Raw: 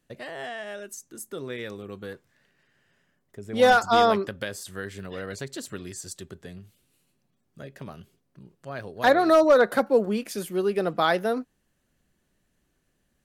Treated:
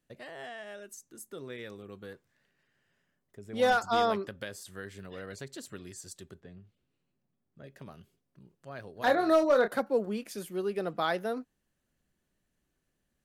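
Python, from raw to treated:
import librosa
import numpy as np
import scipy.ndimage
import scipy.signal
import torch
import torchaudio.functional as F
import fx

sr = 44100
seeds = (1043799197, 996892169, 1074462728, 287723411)

y = fx.spacing_loss(x, sr, db_at_10k=23, at=(6.4, 7.64))
y = fx.doubler(y, sr, ms=28.0, db=-7, at=(8.93, 9.68))
y = F.gain(torch.from_numpy(y), -7.5).numpy()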